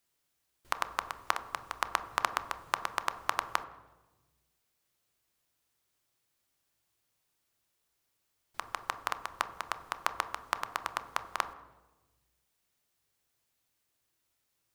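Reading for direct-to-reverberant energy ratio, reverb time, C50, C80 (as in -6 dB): 10.0 dB, 1.2 s, 13.5 dB, 15.0 dB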